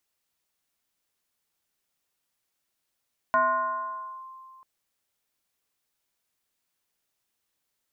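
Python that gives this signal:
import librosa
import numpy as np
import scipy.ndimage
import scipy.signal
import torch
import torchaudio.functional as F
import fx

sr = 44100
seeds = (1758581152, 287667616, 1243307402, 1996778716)

y = fx.fm2(sr, length_s=1.29, level_db=-17.5, carrier_hz=1050.0, ratio=0.38, index=0.95, index_s=0.92, decay_s=2.41, shape='linear')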